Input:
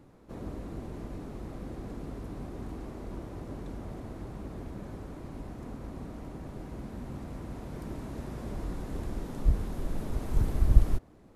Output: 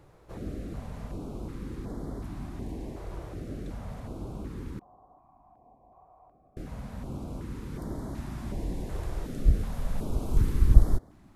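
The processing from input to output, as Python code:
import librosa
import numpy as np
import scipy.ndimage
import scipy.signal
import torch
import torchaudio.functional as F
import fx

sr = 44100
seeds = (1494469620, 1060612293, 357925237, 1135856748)

y = fx.formant_cascade(x, sr, vowel='a', at=(4.79, 6.57))
y = fx.filter_held_notch(y, sr, hz=2.7, low_hz=240.0, high_hz=2600.0)
y = y * 10.0 ** (3.0 / 20.0)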